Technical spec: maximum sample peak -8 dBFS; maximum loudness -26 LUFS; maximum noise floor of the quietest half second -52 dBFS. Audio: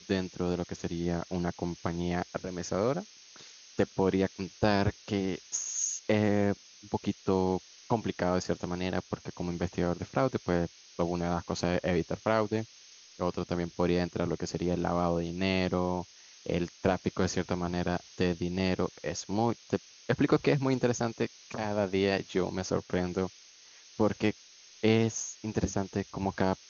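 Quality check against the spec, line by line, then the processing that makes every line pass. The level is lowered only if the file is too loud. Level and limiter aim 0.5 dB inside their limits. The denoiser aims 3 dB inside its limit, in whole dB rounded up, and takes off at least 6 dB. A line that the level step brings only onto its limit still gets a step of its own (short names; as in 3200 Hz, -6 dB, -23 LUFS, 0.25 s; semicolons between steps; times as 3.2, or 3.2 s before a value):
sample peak -10.0 dBFS: OK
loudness -31.5 LUFS: OK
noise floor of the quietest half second -55 dBFS: OK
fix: none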